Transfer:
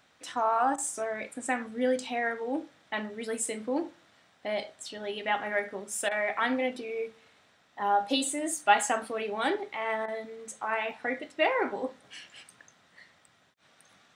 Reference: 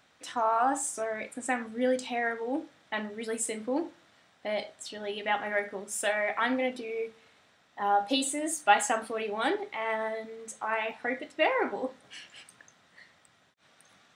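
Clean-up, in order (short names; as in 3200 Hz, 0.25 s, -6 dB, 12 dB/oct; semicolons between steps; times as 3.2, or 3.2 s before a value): interpolate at 0.76/6.09/10.06, 20 ms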